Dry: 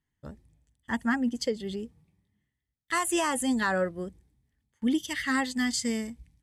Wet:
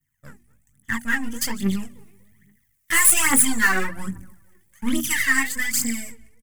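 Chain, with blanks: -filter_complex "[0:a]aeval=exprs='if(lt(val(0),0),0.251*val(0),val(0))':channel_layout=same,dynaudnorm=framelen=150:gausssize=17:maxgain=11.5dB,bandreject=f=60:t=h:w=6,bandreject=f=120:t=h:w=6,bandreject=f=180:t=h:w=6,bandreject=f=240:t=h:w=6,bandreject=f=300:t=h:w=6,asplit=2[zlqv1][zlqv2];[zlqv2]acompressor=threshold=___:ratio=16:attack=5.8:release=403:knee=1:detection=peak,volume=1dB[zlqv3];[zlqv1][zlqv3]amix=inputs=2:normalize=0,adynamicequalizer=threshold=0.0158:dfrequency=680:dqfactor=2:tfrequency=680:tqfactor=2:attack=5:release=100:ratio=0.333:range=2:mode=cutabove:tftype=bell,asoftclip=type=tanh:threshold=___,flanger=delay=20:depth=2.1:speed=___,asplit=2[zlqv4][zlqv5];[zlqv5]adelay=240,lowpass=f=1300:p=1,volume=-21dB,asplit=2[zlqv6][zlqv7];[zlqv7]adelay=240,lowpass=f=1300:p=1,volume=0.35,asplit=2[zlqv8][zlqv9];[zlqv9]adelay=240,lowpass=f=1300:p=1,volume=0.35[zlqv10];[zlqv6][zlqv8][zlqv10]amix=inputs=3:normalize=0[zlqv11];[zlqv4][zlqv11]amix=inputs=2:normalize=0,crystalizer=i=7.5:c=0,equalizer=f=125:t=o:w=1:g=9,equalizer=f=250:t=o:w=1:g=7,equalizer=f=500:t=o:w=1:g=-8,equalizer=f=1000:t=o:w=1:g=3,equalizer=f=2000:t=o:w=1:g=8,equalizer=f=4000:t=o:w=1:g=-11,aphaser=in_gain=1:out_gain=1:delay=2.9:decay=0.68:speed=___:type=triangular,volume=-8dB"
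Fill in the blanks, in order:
-31dB, -8dB, 0.45, 1.2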